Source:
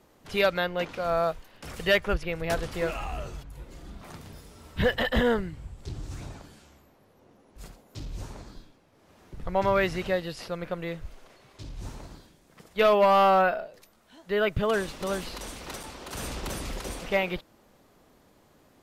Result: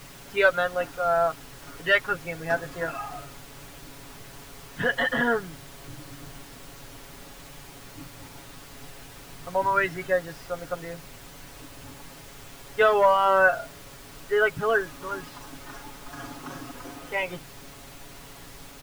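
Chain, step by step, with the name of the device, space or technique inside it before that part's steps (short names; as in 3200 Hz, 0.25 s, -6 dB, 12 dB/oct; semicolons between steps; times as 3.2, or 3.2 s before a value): spectral noise reduction 12 dB; horn gramophone (BPF 200–3200 Hz; bell 1500 Hz +8.5 dB 0.37 oct; wow and flutter 20 cents; pink noise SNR 16 dB); comb 7.2 ms, depth 68%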